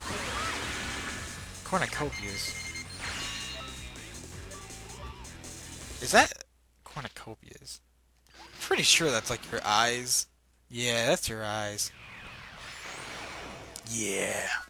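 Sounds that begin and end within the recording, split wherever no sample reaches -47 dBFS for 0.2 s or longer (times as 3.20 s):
6.86–7.77 s
8.27–10.25 s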